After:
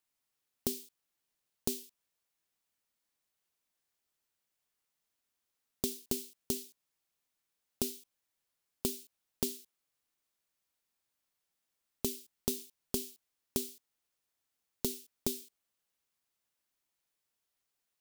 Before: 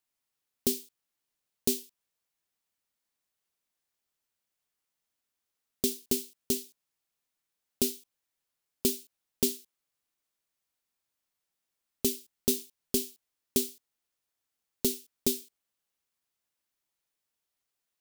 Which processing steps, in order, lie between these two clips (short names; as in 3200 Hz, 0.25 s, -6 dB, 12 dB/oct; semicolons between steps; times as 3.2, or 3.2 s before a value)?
compressor 6:1, threshold -30 dBFS, peak gain reduction 9 dB